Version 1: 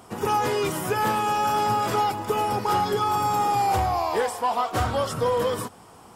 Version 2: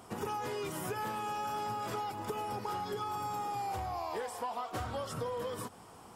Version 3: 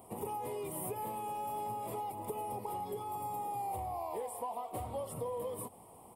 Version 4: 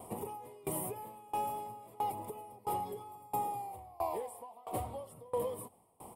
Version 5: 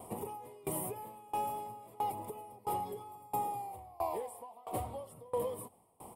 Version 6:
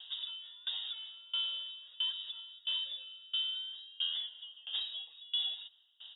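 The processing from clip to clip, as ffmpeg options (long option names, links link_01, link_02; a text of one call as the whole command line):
ffmpeg -i in.wav -af "acompressor=threshold=-30dB:ratio=6,volume=-5dB" out.wav
ffmpeg -i in.wav -af "firequalizer=gain_entry='entry(290,0);entry(580,4);entry(1000,1);entry(1500,-21);entry(2100,-4);entry(6200,-15);entry(9000,8)':delay=0.05:min_phase=1,volume=-3.5dB" out.wav
ffmpeg -i in.wav -af "aeval=exprs='val(0)*pow(10,-26*if(lt(mod(1.5*n/s,1),2*abs(1.5)/1000),1-mod(1.5*n/s,1)/(2*abs(1.5)/1000),(mod(1.5*n/s,1)-2*abs(1.5)/1000)/(1-2*abs(1.5)/1000))/20)':channel_layout=same,volume=7.5dB" out.wav
ffmpeg -i in.wav -af anull out.wav
ffmpeg -i in.wav -af "lowpass=frequency=3300:width_type=q:width=0.5098,lowpass=frequency=3300:width_type=q:width=0.6013,lowpass=frequency=3300:width_type=q:width=0.9,lowpass=frequency=3300:width_type=q:width=2.563,afreqshift=-3900" out.wav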